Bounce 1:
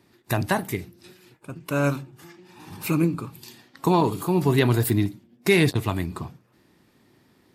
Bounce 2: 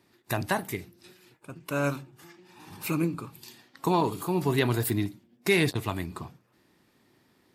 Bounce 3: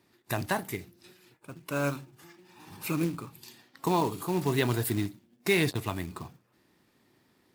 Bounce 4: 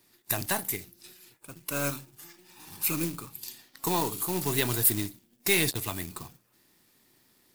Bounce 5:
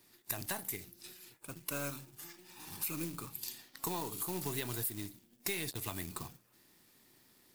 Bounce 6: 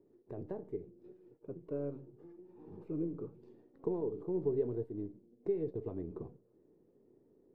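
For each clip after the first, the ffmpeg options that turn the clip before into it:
-af "lowshelf=f=330:g=-4.5,volume=-3dB"
-af "acrusher=bits=4:mode=log:mix=0:aa=0.000001,volume=-2dB"
-af "aeval=exprs='if(lt(val(0),0),0.708*val(0),val(0))':c=same,crystalizer=i=3.5:c=0,volume=-1.5dB"
-af "acompressor=threshold=-34dB:ratio=6,volume=-1dB"
-af "lowpass=f=440:t=q:w=4.9,flanger=delay=3.2:depth=3.5:regen=88:speed=0.82:shape=sinusoidal,volume=3.5dB"

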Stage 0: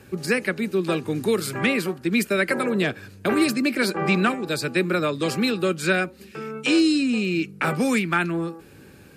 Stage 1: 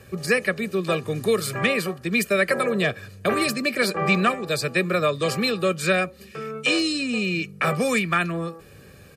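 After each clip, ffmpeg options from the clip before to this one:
-af "aecho=1:1:1.7:0.59"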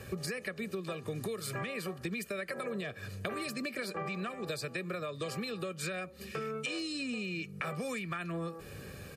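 -af "alimiter=limit=-18dB:level=0:latency=1:release=305,acompressor=threshold=-35dB:ratio=12,volume=1dB"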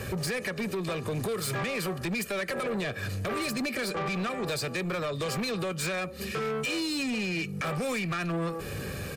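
-filter_complex "[0:a]asplit=2[a][b];[b]alimiter=level_in=6dB:limit=-24dB:level=0:latency=1,volume=-6dB,volume=0.5dB[c];[a][c]amix=inputs=2:normalize=0,asoftclip=type=tanh:threshold=-32.5dB,volume=5.5dB"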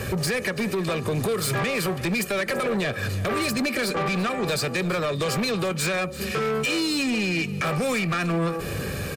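-af "aecho=1:1:336:0.15,volume=6dB"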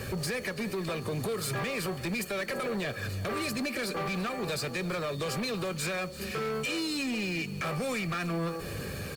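-af "acrusher=bits=8:dc=4:mix=0:aa=0.000001,aeval=exprs='val(0)+0.00501*sin(2*PI*4400*n/s)':c=same,volume=-7.5dB" -ar 48000 -c:a libopus -b:a 48k

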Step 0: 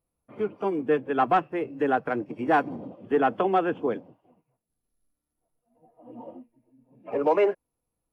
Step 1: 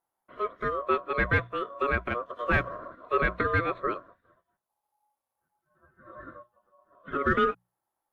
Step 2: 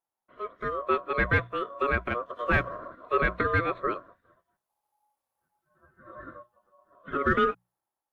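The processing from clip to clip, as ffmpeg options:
-af "aeval=exprs='val(0)*sin(2*PI*840*n/s)':c=same,bandreject=f=60:t=h:w=6,bandreject=f=120:t=h:w=6,bandreject=f=180:t=h:w=6"
-af "dynaudnorm=f=140:g=9:m=8.5dB,volume=-7.5dB"

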